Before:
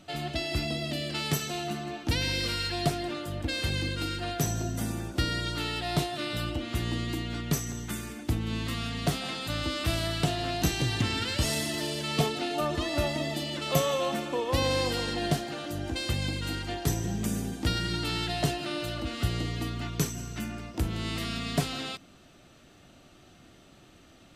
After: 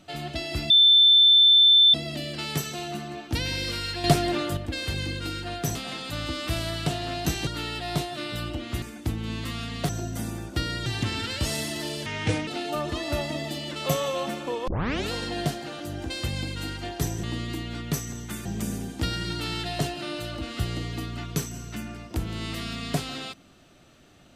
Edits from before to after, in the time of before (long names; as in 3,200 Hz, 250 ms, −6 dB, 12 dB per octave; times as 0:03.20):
0:00.70: insert tone 3,540 Hz −12.5 dBFS 1.24 s
0:02.80–0:03.33: clip gain +7.5 dB
0:04.51–0:05.48: swap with 0:09.12–0:10.84
0:06.83–0:08.05: move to 0:17.09
0:12.04–0:12.33: play speed 70%
0:14.53: tape start 0.44 s